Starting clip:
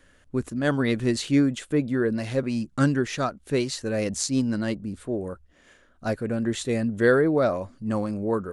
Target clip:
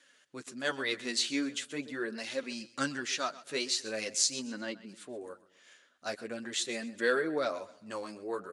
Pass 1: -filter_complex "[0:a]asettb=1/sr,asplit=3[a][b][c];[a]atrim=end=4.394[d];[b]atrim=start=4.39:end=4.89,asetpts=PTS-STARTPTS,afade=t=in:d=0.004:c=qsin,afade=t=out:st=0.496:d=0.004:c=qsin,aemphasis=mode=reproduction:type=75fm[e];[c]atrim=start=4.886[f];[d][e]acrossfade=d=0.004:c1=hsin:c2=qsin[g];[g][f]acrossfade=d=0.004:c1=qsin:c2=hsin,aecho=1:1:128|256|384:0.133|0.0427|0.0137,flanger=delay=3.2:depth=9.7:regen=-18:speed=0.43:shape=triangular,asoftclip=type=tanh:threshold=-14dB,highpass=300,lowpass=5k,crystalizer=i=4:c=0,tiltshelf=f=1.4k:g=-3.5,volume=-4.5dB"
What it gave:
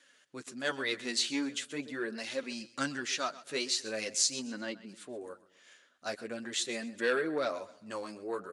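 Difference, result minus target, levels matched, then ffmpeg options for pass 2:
soft clip: distortion +14 dB
-filter_complex "[0:a]asettb=1/sr,asplit=3[a][b][c];[a]atrim=end=4.394[d];[b]atrim=start=4.39:end=4.89,asetpts=PTS-STARTPTS,afade=t=in:d=0.004:c=qsin,afade=t=out:st=0.496:d=0.004:c=qsin,aemphasis=mode=reproduction:type=75fm[e];[c]atrim=start=4.886[f];[d][e]acrossfade=d=0.004:c1=hsin:c2=qsin[g];[g][f]acrossfade=d=0.004:c1=qsin:c2=hsin,aecho=1:1:128|256|384:0.133|0.0427|0.0137,flanger=delay=3.2:depth=9.7:regen=-18:speed=0.43:shape=triangular,asoftclip=type=tanh:threshold=-6dB,highpass=300,lowpass=5k,crystalizer=i=4:c=0,tiltshelf=f=1.4k:g=-3.5,volume=-4.5dB"

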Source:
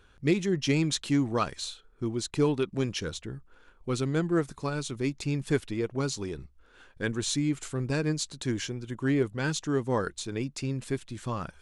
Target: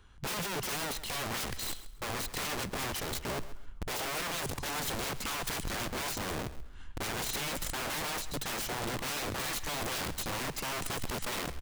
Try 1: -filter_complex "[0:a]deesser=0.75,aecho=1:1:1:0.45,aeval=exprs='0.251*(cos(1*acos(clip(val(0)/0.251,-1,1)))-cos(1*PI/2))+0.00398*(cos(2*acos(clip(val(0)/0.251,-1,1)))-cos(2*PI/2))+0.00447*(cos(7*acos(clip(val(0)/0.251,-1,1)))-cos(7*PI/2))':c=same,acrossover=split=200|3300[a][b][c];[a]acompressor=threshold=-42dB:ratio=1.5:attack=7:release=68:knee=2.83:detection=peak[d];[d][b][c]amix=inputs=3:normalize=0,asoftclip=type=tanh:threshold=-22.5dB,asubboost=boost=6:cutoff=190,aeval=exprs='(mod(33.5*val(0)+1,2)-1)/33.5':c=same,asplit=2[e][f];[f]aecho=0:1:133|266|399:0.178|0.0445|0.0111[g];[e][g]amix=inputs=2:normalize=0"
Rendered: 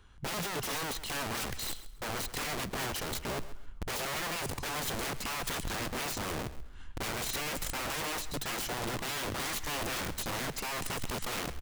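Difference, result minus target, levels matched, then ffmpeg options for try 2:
soft clip: distortion +14 dB
-filter_complex "[0:a]deesser=0.75,aecho=1:1:1:0.45,aeval=exprs='0.251*(cos(1*acos(clip(val(0)/0.251,-1,1)))-cos(1*PI/2))+0.00398*(cos(2*acos(clip(val(0)/0.251,-1,1)))-cos(2*PI/2))+0.00447*(cos(7*acos(clip(val(0)/0.251,-1,1)))-cos(7*PI/2))':c=same,acrossover=split=200|3300[a][b][c];[a]acompressor=threshold=-42dB:ratio=1.5:attack=7:release=68:knee=2.83:detection=peak[d];[d][b][c]amix=inputs=3:normalize=0,asoftclip=type=tanh:threshold=-13dB,asubboost=boost=6:cutoff=190,aeval=exprs='(mod(33.5*val(0)+1,2)-1)/33.5':c=same,asplit=2[e][f];[f]aecho=0:1:133|266|399:0.178|0.0445|0.0111[g];[e][g]amix=inputs=2:normalize=0"

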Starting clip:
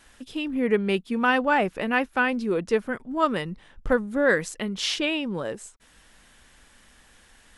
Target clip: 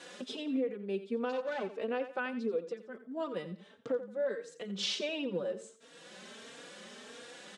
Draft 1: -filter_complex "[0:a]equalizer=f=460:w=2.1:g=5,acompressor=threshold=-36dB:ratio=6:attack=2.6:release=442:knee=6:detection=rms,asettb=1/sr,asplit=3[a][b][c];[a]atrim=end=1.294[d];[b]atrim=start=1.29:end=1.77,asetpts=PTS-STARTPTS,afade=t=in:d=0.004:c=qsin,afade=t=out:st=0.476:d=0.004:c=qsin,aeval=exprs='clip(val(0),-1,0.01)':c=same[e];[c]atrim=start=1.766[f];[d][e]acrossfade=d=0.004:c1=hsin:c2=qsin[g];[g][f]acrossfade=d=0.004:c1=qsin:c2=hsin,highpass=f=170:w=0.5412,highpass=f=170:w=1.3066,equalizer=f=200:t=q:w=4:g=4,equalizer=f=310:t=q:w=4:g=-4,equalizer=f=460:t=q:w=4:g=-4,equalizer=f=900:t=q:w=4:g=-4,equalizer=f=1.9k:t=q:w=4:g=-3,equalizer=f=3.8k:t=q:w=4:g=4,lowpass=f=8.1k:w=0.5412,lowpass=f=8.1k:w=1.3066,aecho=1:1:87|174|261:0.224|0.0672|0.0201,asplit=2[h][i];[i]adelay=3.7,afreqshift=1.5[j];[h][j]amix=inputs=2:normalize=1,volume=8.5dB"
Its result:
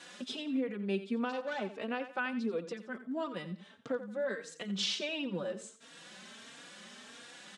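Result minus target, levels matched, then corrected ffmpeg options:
500 Hz band -2.5 dB
-filter_complex "[0:a]equalizer=f=460:w=2.1:g=16,acompressor=threshold=-36dB:ratio=6:attack=2.6:release=442:knee=6:detection=rms,asettb=1/sr,asplit=3[a][b][c];[a]atrim=end=1.294[d];[b]atrim=start=1.29:end=1.77,asetpts=PTS-STARTPTS,afade=t=in:d=0.004:c=qsin,afade=t=out:st=0.476:d=0.004:c=qsin,aeval=exprs='clip(val(0),-1,0.01)':c=same[e];[c]atrim=start=1.766[f];[d][e]acrossfade=d=0.004:c1=hsin:c2=qsin[g];[g][f]acrossfade=d=0.004:c1=qsin:c2=hsin,highpass=f=170:w=0.5412,highpass=f=170:w=1.3066,equalizer=f=200:t=q:w=4:g=4,equalizer=f=310:t=q:w=4:g=-4,equalizer=f=460:t=q:w=4:g=-4,equalizer=f=900:t=q:w=4:g=-4,equalizer=f=1.9k:t=q:w=4:g=-3,equalizer=f=3.8k:t=q:w=4:g=4,lowpass=f=8.1k:w=0.5412,lowpass=f=8.1k:w=1.3066,aecho=1:1:87|174|261:0.224|0.0672|0.0201,asplit=2[h][i];[i]adelay=3.7,afreqshift=1.5[j];[h][j]amix=inputs=2:normalize=1,volume=8.5dB"

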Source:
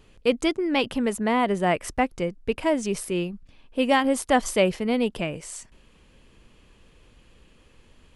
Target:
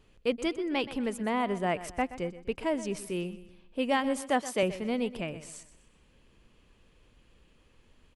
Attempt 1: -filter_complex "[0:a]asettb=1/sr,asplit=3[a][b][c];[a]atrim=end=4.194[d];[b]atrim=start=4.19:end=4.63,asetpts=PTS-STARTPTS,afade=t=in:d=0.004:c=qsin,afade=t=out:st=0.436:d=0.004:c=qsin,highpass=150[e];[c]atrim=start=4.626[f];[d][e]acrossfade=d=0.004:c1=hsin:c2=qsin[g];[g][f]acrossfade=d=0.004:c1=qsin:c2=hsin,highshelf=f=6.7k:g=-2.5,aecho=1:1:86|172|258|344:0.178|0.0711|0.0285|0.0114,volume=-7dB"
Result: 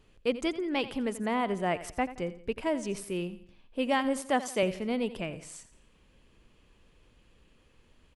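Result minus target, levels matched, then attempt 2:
echo 39 ms early
-filter_complex "[0:a]asettb=1/sr,asplit=3[a][b][c];[a]atrim=end=4.194[d];[b]atrim=start=4.19:end=4.63,asetpts=PTS-STARTPTS,afade=t=in:d=0.004:c=qsin,afade=t=out:st=0.436:d=0.004:c=qsin,highpass=150[e];[c]atrim=start=4.626[f];[d][e]acrossfade=d=0.004:c1=hsin:c2=qsin[g];[g][f]acrossfade=d=0.004:c1=qsin:c2=hsin,highshelf=f=6.7k:g=-2.5,aecho=1:1:125|250|375|500:0.178|0.0711|0.0285|0.0114,volume=-7dB"

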